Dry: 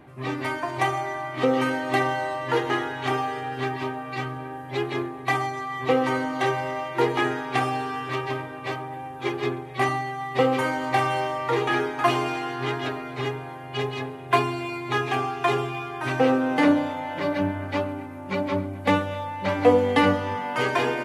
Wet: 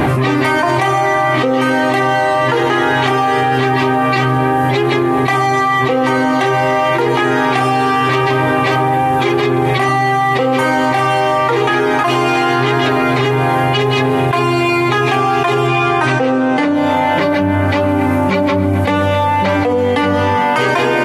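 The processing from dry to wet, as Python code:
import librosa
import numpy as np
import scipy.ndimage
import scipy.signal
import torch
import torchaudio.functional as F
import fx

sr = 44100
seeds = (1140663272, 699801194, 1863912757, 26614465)

y = fx.lowpass(x, sr, hz=9500.0, slope=24, at=(15.67, 16.74))
y = fx.env_flatten(y, sr, amount_pct=100)
y = y * librosa.db_to_amplitude(-1.5)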